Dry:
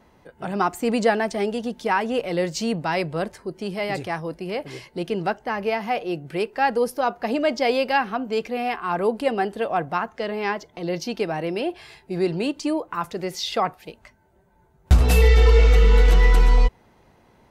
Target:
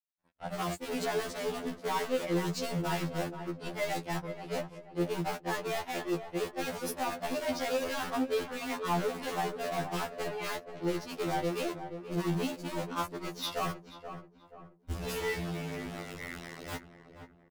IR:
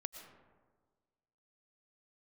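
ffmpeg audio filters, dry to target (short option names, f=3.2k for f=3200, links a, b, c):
-filter_complex "[0:a]aeval=exprs='val(0)+0.5*0.0794*sgn(val(0))':c=same,bandreject=f=60.52:t=h:w=4,bandreject=f=121.04:t=h:w=4,bandreject=f=181.56:t=h:w=4,bandreject=f=242.08:t=h:w=4,bandreject=f=302.6:t=h:w=4,agate=range=-10dB:threshold=-22dB:ratio=16:detection=peak,acrusher=bits=4:mix=0:aa=0.5,flanger=delay=1.1:depth=7.2:regen=-43:speed=0.14:shape=sinusoidal,asoftclip=type=hard:threshold=-23dB,acompressor=threshold=-29dB:ratio=6,asplit=2[a][b];[b]adelay=480,lowpass=f=1.4k:p=1,volume=-9dB,asplit=2[c][d];[d]adelay=480,lowpass=f=1.4k:p=1,volume=0.46,asplit=2[e][f];[f]adelay=480,lowpass=f=1.4k:p=1,volume=0.46,asplit=2[g][h];[h]adelay=480,lowpass=f=1.4k:p=1,volume=0.46,asplit=2[i][j];[j]adelay=480,lowpass=f=1.4k:p=1,volume=0.46[k];[a][c][e][g][i][k]amix=inputs=6:normalize=0,afftfilt=real='re*2*eq(mod(b,4),0)':imag='im*2*eq(mod(b,4),0)':win_size=2048:overlap=0.75"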